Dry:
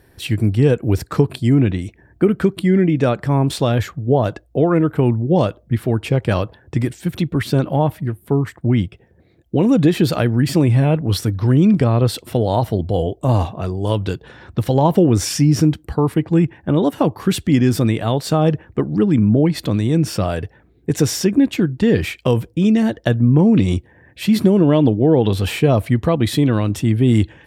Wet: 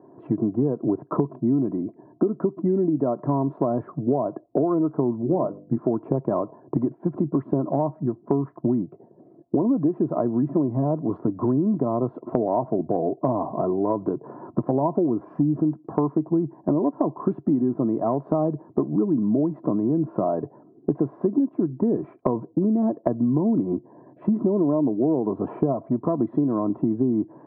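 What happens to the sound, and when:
5.21–5.78 notches 50/100/150/200/250/300/350/400/450/500 Hz
25.72–26.18 tube stage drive 8 dB, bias 0.45
whole clip: Chebyshev band-pass 140–1100 Hz, order 4; comb 3 ms, depth 51%; compressor 6:1, threshold -25 dBFS; gain +5.5 dB

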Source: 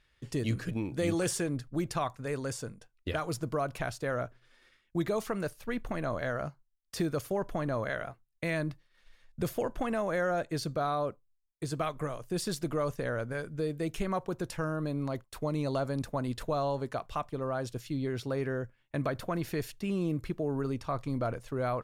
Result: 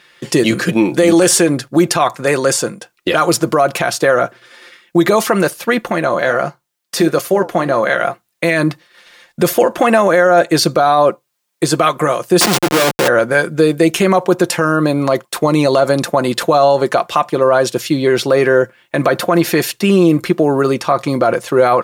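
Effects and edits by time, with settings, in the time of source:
5.86–8 flange 1.5 Hz, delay 3.5 ms, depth 9.3 ms, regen -74%
12.41–13.08 Schmitt trigger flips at -37.5 dBFS
whole clip: HPF 270 Hz 12 dB/oct; comb 5.7 ms, depth 46%; maximiser +24.5 dB; gain -1 dB

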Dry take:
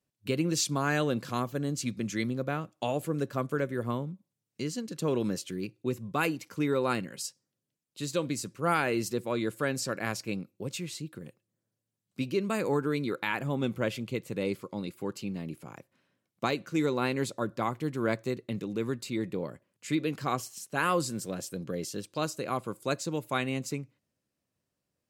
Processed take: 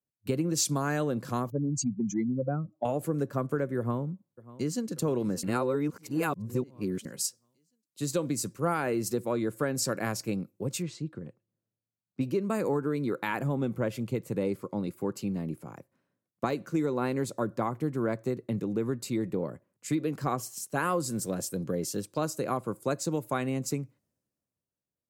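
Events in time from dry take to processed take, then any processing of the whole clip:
1.5–2.85 spectral contrast raised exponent 2.4
3.78–4.9 echo throw 0.59 s, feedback 60%, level -17 dB
5.43–7.05 reverse
10.82–12.21 air absorption 120 m
whole clip: bell 3100 Hz -9.5 dB 1.7 oct; compressor, threshold -31 dBFS; three-band expander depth 40%; gain +6 dB

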